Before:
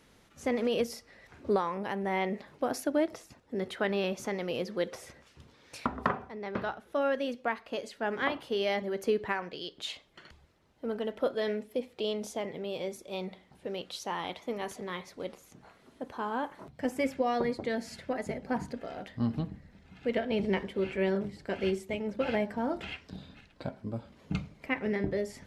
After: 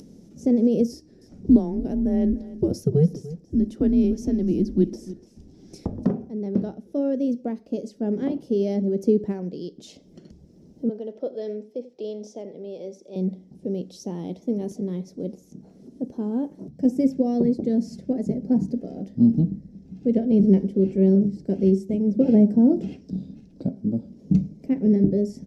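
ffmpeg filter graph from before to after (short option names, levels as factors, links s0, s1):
-filter_complex "[0:a]asettb=1/sr,asplit=3[s0][s1][s2];[s0]atrim=end=0.924[s3];[s1]atrim=start=0.92:end=6.05,asetpts=PTS-STARTPTS,afade=t=in:d=0.004:c=qsin,afade=t=out:st=5.126:d=0.004:c=qsin,afreqshift=-160,aecho=1:1:294:0.141,atrim=end_sample=226233[s4];[s2]atrim=start=6.046[s5];[s3][s4]acrossfade=d=0.004:c1=hsin:c2=qsin[s6];[s6][s5]acrossfade=d=0.004:c1=qsin:c2=hsin,asettb=1/sr,asplit=3[s7][s8][s9];[s7]atrim=end=10.894[s10];[s8]atrim=start=10.89:end=13.16,asetpts=PTS-STARTPTS,afade=t=in:d=0.004:c=qsin,afade=t=out:st=2.266:d=0.004:c=qsin,acrossover=split=440 6400:gain=0.126 1 0.1[s11][s12][s13];[s11][s12][s13]amix=inputs=3:normalize=0,aecho=1:1:86:0.126,atrim=end_sample=100107[s14];[s9]atrim=start=13.156[s15];[s10][s14]acrossfade=d=0.004:c1=hsin:c2=qsin[s16];[s16][s15]acrossfade=d=0.004:c1=qsin:c2=hsin,asettb=1/sr,asplit=3[s17][s18][s19];[s17]atrim=end=22.164[s20];[s18]atrim=start=22.16:end=23.01,asetpts=PTS-STARTPTS,afade=t=in:d=0.004:c=qsin,afade=t=out:st=0.846:d=0.004:c=qsin,highpass=f=340:p=1,lowshelf=f=450:g=11.5[s21];[s19]atrim=start=23.006[s22];[s20][s21]acrossfade=d=0.004:c1=hsin:c2=qsin[s23];[s23][s22]acrossfade=d=0.004:c1=qsin:c2=hsin,firequalizer=gain_entry='entry(110,0);entry(180,13);entry(1100,-24);entry(7300,-10)':delay=0.05:min_phase=1,acompressor=mode=upward:threshold=0.00631:ratio=2.5,equalizer=f=5500:w=2.6:g=13.5,volume=1.58"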